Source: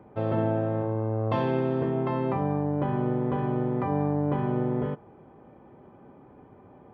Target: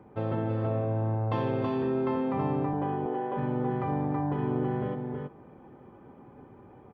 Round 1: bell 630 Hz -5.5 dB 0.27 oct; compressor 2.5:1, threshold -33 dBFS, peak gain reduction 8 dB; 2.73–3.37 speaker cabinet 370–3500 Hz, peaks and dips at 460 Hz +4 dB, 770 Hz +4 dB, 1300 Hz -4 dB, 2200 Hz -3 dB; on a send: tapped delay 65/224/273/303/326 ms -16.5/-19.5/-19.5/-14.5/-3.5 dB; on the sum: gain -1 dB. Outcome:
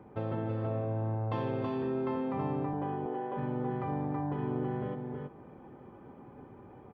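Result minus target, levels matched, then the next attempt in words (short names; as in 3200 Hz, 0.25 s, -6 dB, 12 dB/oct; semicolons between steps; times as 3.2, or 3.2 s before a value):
compressor: peak gain reduction +4.5 dB
bell 630 Hz -5.5 dB 0.27 oct; compressor 2.5:1, threshold -25.5 dBFS, peak gain reduction 3.5 dB; 2.73–3.37 speaker cabinet 370–3500 Hz, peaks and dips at 460 Hz +4 dB, 770 Hz +4 dB, 1300 Hz -4 dB, 2200 Hz -3 dB; on a send: tapped delay 65/224/273/303/326 ms -16.5/-19.5/-19.5/-14.5/-3.5 dB; on the sum: gain -1 dB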